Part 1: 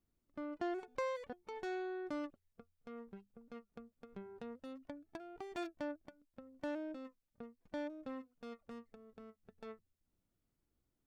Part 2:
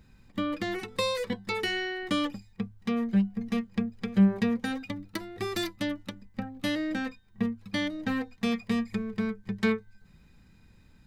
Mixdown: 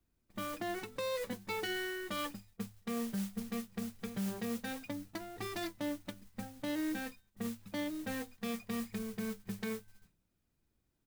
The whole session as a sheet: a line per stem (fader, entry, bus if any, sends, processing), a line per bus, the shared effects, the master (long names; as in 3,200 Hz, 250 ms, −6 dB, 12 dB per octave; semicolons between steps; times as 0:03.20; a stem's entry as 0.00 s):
+2.5 dB, 0.00 s, no send, no processing
−7.0 dB, 1.4 ms, no send, noise gate with hold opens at −45 dBFS; noise that follows the level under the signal 13 dB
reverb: not used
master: brickwall limiter −28.5 dBFS, peak gain reduction 11 dB